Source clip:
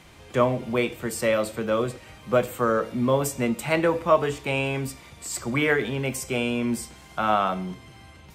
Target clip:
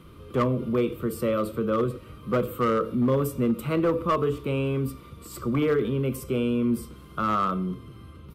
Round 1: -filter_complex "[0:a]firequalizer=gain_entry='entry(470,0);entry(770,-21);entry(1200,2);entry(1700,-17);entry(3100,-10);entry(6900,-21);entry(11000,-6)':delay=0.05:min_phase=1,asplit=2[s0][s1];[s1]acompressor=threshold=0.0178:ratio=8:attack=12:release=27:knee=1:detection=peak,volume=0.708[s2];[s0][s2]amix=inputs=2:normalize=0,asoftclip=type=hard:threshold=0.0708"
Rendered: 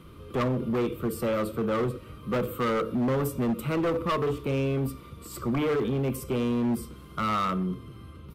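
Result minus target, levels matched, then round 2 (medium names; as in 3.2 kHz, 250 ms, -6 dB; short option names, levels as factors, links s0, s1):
hard clipper: distortion +10 dB
-filter_complex "[0:a]firequalizer=gain_entry='entry(470,0);entry(770,-21);entry(1200,2);entry(1700,-17);entry(3100,-10);entry(6900,-21);entry(11000,-6)':delay=0.05:min_phase=1,asplit=2[s0][s1];[s1]acompressor=threshold=0.0178:ratio=8:attack=12:release=27:knee=1:detection=peak,volume=0.708[s2];[s0][s2]amix=inputs=2:normalize=0,asoftclip=type=hard:threshold=0.141"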